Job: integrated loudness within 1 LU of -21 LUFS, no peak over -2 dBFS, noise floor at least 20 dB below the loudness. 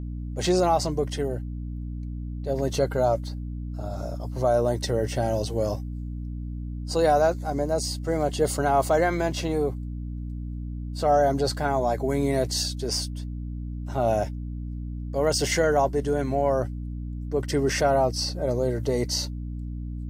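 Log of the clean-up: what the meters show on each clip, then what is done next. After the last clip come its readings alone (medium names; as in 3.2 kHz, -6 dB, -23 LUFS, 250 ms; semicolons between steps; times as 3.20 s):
hum 60 Hz; highest harmonic 300 Hz; hum level -30 dBFS; loudness -26.0 LUFS; peak level -10.5 dBFS; loudness target -21.0 LUFS
-> hum notches 60/120/180/240/300 Hz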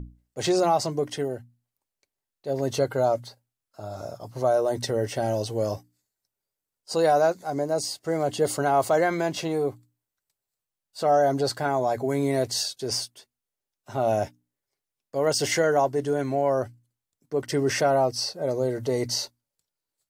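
hum not found; loudness -25.5 LUFS; peak level -11.0 dBFS; loudness target -21.0 LUFS
-> trim +4.5 dB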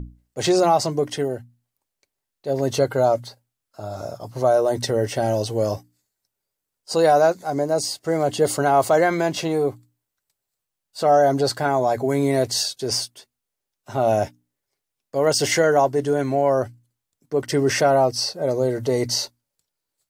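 loudness -21.0 LUFS; peak level -6.5 dBFS; noise floor -83 dBFS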